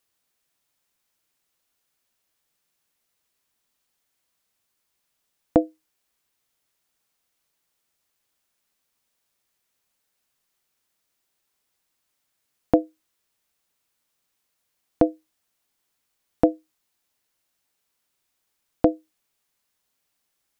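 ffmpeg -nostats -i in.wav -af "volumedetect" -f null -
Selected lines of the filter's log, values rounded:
mean_volume: -34.0 dB
max_volume: -2.6 dB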